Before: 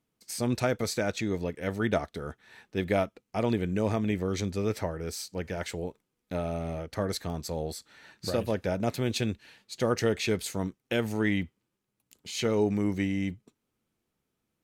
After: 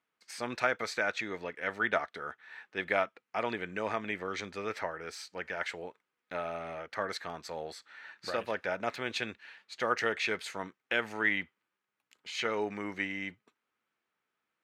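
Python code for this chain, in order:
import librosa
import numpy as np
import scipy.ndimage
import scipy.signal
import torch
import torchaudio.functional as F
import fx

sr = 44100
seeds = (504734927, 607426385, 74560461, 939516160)

y = fx.bandpass_q(x, sr, hz=1600.0, q=1.3)
y = F.gain(torch.from_numpy(y), 6.0).numpy()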